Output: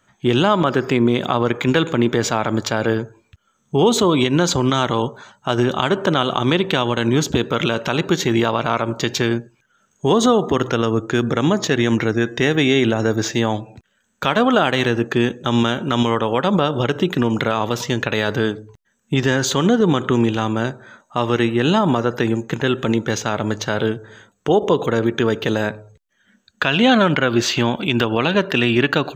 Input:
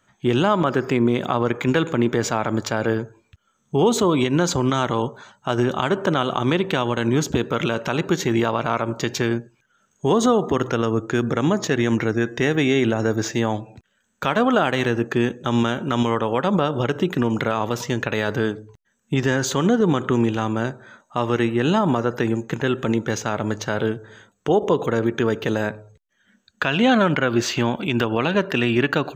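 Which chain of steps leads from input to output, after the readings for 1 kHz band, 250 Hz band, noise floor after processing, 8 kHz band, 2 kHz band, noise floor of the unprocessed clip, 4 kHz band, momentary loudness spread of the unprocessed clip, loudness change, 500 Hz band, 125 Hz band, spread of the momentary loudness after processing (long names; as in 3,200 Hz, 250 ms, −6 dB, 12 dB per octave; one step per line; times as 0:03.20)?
+2.5 dB, +2.5 dB, −65 dBFS, +3.0 dB, +3.5 dB, −67 dBFS, +6.5 dB, 7 LU, +3.0 dB, +2.5 dB, +2.5 dB, 7 LU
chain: dynamic equaliser 3,600 Hz, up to +5 dB, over −44 dBFS, Q 1.8
level +2.5 dB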